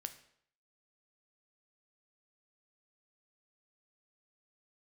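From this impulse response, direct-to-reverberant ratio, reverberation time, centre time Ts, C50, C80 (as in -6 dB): 8.5 dB, 0.65 s, 7 ms, 13.0 dB, 16.0 dB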